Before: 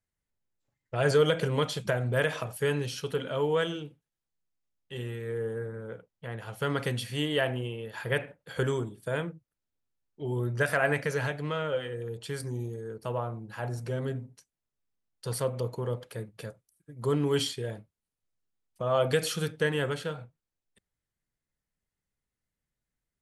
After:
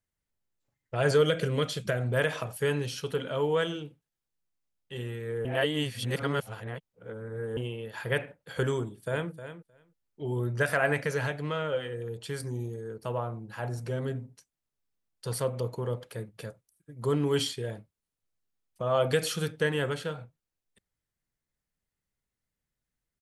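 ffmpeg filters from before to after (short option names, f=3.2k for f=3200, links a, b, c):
-filter_complex "[0:a]asettb=1/sr,asplit=3[a][b][c];[a]atrim=end=1.224[d];[b]atrim=start=1.22:end=1.99,asetpts=PTS-STARTPTS,afade=t=in:d=0.004:c=qsin,afade=t=out:st=0.766:d=0.004:c=qsin,equalizer=f=890:w=3.4:g=-11.5[e];[c]atrim=start=1.986[f];[d][e]acrossfade=d=0.004:c1=hsin:c2=qsin[g];[g][f]acrossfade=d=0.004:c1=qsin:c2=hsin,asplit=2[h][i];[i]afade=t=in:st=8.81:d=0.01,afade=t=out:st=9.31:d=0.01,aecho=0:1:310|620:0.266073|0.0266073[j];[h][j]amix=inputs=2:normalize=0,asplit=3[k][l][m];[k]atrim=end=5.452[n];[l]atrim=start=5.448:end=7.572,asetpts=PTS-STARTPTS,areverse[o];[m]atrim=start=7.568[p];[n][o]acrossfade=d=0.004:c1=hsin:c2=hsin[q];[q][p]acrossfade=d=0.004:c1=hsin:c2=hsin"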